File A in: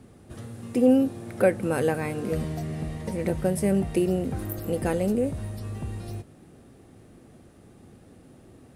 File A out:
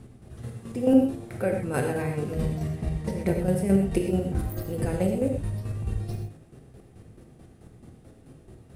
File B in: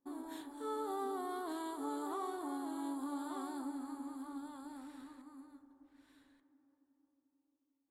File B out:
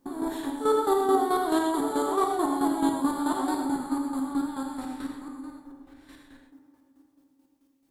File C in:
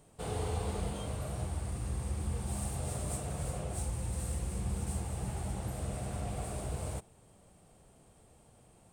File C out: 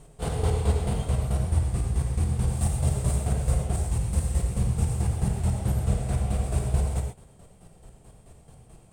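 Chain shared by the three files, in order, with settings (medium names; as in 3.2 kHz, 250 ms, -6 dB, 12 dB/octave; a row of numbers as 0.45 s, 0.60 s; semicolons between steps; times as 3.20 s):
bass shelf 110 Hz +10 dB; square tremolo 4.6 Hz, depth 60%, duty 30%; wow and flutter 21 cents; gated-style reverb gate 150 ms flat, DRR 2 dB; normalise loudness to -27 LUFS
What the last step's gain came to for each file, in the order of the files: 0.0 dB, +17.0 dB, +7.5 dB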